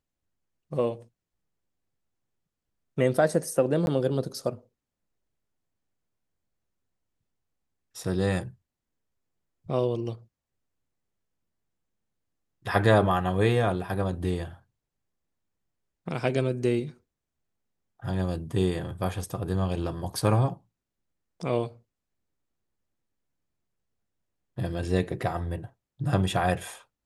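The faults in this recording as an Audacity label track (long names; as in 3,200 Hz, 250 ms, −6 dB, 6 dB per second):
3.860000	3.870000	drop-out 11 ms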